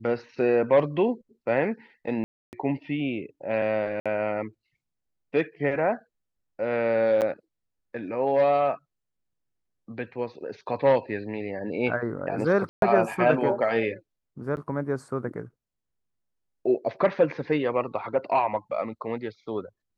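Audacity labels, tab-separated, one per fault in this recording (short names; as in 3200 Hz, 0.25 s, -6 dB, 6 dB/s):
2.240000	2.530000	gap 0.289 s
4.000000	4.060000	gap 56 ms
7.210000	7.220000	gap 8.3 ms
12.690000	12.820000	gap 0.132 s
14.560000	14.570000	gap 9.8 ms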